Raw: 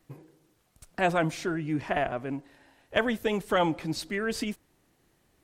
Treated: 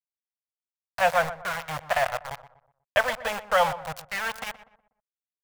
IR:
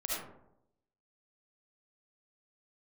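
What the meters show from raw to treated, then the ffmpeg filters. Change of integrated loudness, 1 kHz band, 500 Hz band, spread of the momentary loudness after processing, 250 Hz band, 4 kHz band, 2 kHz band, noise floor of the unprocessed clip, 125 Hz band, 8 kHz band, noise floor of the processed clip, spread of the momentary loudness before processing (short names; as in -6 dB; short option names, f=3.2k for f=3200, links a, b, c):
+2.5 dB, +5.5 dB, +1.5 dB, 15 LU, -15.5 dB, +2.5 dB, +5.0 dB, -69 dBFS, -7.5 dB, +3.0 dB, under -85 dBFS, 10 LU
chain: -filter_complex "[0:a]aeval=exprs='val(0)*gte(abs(val(0)),0.0422)':c=same,firequalizer=gain_entry='entry(120,0);entry(330,-29);entry(520,4);entry(1000,6);entry(4000,0)':delay=0.05:min_phase=1,asplit=2[a][b];[b]adelay=122,lowpass=f=1.5k:p=1,volume=-13dB,asplit=2[c][d];[d]adelay=122,lowpass=f=1.5k:p=1,volume=0.4,asplit=2[e][f];[f]adelay=122,lowpass=f=1.5k:p=1,volume=0.4,asplit=2[g][h];[h]adelay=122,lowpass=f=1.5k:p=1,volume=0.4[i];[a][c][e][g][i]amix=inputs=5:normalize=0"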